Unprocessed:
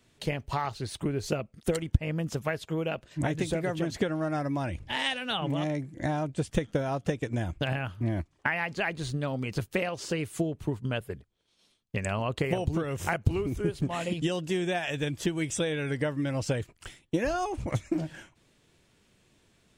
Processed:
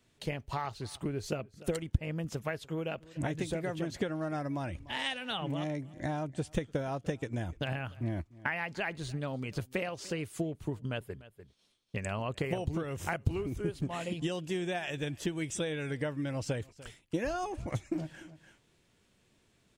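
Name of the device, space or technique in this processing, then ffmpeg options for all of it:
ducked delay: -filter_complex "[0:a]asplit=3[a][b][c];[b]adelay=295,volume=-7.5dB[d];[c]apad=whole_len=885239[e];[d][e]sidechaincompress=threshold=-47dB:ratio=12:attack=46:release=352[f];[a][f]amix=inputs=2:normalize=0,volume=-5dB"

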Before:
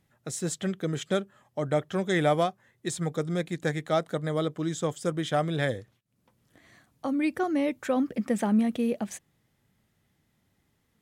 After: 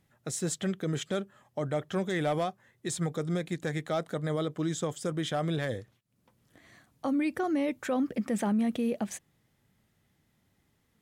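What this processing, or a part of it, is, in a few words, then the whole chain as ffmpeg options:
clipper into limiter: -af "asoftclip=type=hard:threshold=-16.5dB,alimiter=limit=-22dB:level=0:latency=1:release=32"

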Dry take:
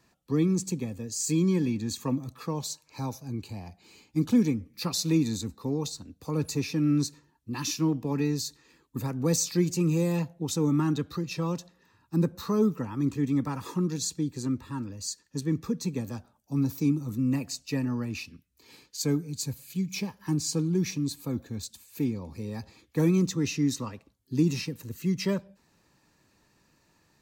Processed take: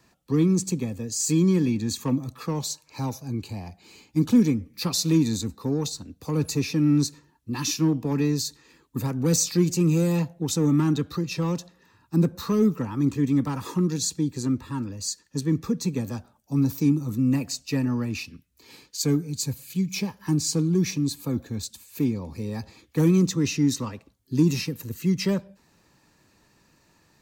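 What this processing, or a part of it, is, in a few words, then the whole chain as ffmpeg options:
one-band saturation: -filter_complex "[0:a]asettb=1/sr,asplit=3[a][b][c];[a]atrim=end=24.484[d];[b]atrim=start=24.48:end=24.94,asetpts=PTS-STARTPTS,afade=t=in:d=0.004:c=qsin,afade=t=out:st=0.456:d=0.004:c=qsin,equalizer=f=13k:w=1.8:g=6[e];[c]atrim=start=24.936[f];[d][e]acrossfade=d=0.004:c1=hsin:c2=qsin[g];[g][f]acrossfade=d=0.004:c1=qsin:c2=hsin,acrossover=split=390|3600[h][i][j];[i]asoftclip=type=tanh:threshold=-32.5dB[k];[h][k][j]amix=inputs=3:normalize=0,volume=4.5dB"

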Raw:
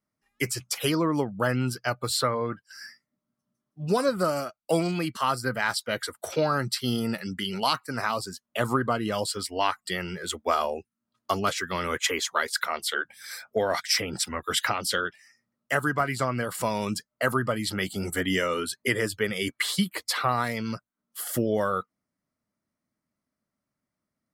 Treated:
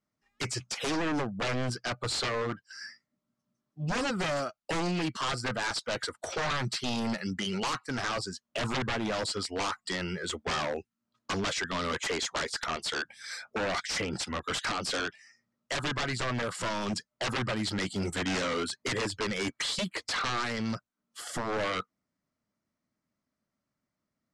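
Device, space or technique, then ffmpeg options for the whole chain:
synthesiser wavefolder: -af "aeval=exprs='0.0562*(abs(mod(val(0)/0.0562+3,4)-2)-1)':c=same,lowpass=f=7.8k:w=0.5412,lowpass=f=7.8k:w=1.3066"

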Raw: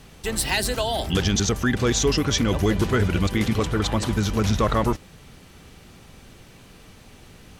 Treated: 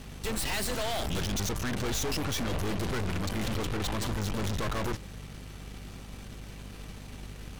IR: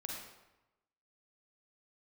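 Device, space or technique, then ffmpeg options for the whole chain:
valve amplifier with mains hum: -af "aeval=exprs='(tanh(56.2*val(0)+0.75)-tanh(0.75))/56.2':c=same,aeval=exprs='val(0)+0.00398*(sin(2*PI*50*n/s)+sin(2*PI*2*50*n/s)/2+sin(2*PI*3*50*n/s)/3+sin(2*PI*4*50*n/s)/4+sin(2*PI*5*50*n/s)/5)':c=same,volume=4.5dB"

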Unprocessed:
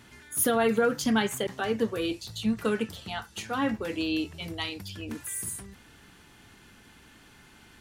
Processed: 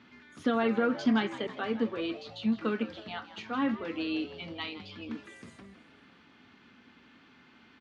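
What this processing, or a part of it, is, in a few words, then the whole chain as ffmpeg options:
frequency-shifting delay pedal into a guitar cabinet: -filter_complex "[0:a]asplit=6[a][b][c][d][e][f];[b]adelay=163,afreqshift=110,volume=-14.5dB[g];[c]adelay=326,afreqshift=220,volume=-20dB[h];[d]adelay=489,afreqshift=330,volume=-25.5dB[i];[e]adelay=652,afreqshift=440,volume=-31dB[j];[f]adelay=815,afreqshift=550,volume=-36.6dB[k];[a][g][h][i][j][k]amix=inputs=6:normalize=0,highpass=110,equalizer=f=120:t=q:w=4:g=-5,equalizer=f=250:t=q:w=4:g=9,equalizer=f=1.2k:t=q:w=4:g=5,equalizer=f=2.3k:t=q:w=4:g=3,lowpass=f=4.6k:w=0.5412,lowpass=f=4.6k:w=1.3066,volume=-5.5dB"

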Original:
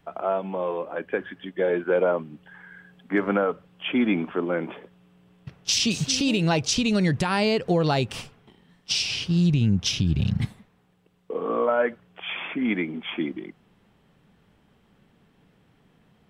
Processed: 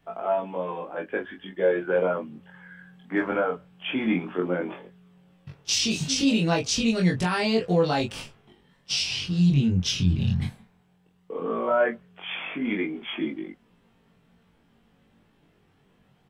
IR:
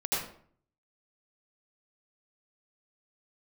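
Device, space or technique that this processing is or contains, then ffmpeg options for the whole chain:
double-tracked vocal: -filter_complex "[0:a]asplit=2[a][b];[b]adelay=22,volume=-3.5dB[c];[a][c]amix=inputs=2:normalize=0,flanger=delay=17.5:depth=5.8:speed=0.14"

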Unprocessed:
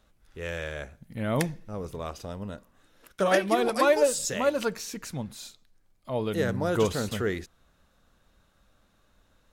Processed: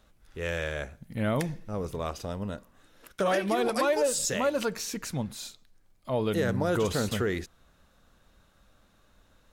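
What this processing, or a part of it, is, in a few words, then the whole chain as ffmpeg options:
soft clipper into limiter: -af "asoftclip=type=tanh:threshold=-11dB,alimiter=limit=-20.5dB:level=0:latency=1:release=118,volume=2.5dB"

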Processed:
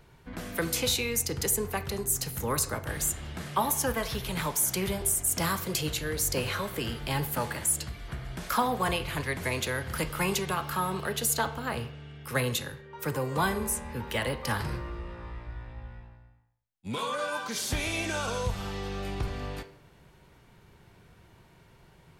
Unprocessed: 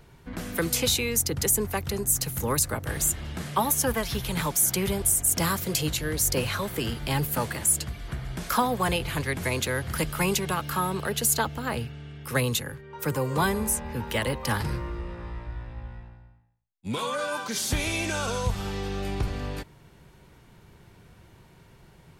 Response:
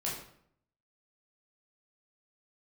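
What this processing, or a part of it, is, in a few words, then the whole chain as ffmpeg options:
filtered reverb send: -filter_complex "[0:a]asplit=2[a][b];[b]highpass=380,lowpass=5.3k[c];[1:a]atrim=start_sample=2205[d];[c][d]afir=irnorm=-1:irlink=0,volume=-10dB[e];[a][e]amix=inputs=2:normalize=0,volume=-4dB"

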